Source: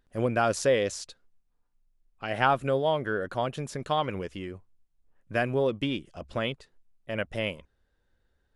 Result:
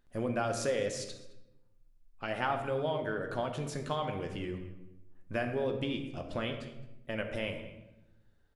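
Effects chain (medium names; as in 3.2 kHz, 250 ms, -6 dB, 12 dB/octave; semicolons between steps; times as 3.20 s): compression 2:1, threshold -35 dBFS, peak gain reduction 9.5 dB; echo from a far wall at 37 m, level -18 dB; on a send at -4 dB: reverberation RT60 0.95 s, pre-delay 3 ms; on the sum: trim -1 dB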